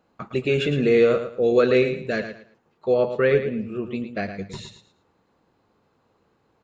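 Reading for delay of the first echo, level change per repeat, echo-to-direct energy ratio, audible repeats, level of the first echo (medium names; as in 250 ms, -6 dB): 111 ms, -12.0 dB, -9.0 dB, 3, -9.5 dB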